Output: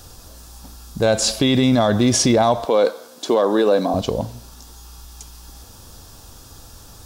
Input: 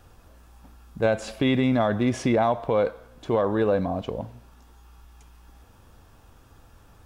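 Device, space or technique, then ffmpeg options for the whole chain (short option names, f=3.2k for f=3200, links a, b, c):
over-bright horn tweeter: -filter_complex "[0:a]highshelf=f=3.3k:t=q:w=1.5:g=11,alimiter=limit=-16dB:level=0:latency=1:release=50,asettb=1/sr,asplit=3[a][b][c];[a]atrim=end=2.654[d];[b]atrim=start=2.65:end=3.94,asetpts=PTS-STARTPTS,afade=t=in:d=0.004:c=qsin,afade=t=out:st=1.286:d=0.004:c=qsin,highpass=f=230:w=0.5412,highpass=f=230:w=1.3066[e];[c]atrim=start=3.936[f];[d][e]acrossfade=d=0.004:c1=hsin:c2=qsin[g];[g][f]acrossfade=d=0.004:c1=qsin:c2=hsin,volume=9dB"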